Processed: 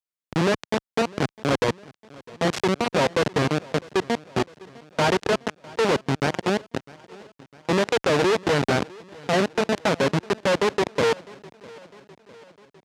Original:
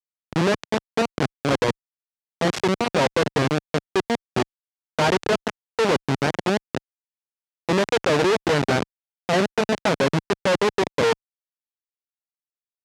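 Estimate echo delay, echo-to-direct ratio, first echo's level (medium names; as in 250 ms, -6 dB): 654 ms, -20.5 dB, -22.5 dB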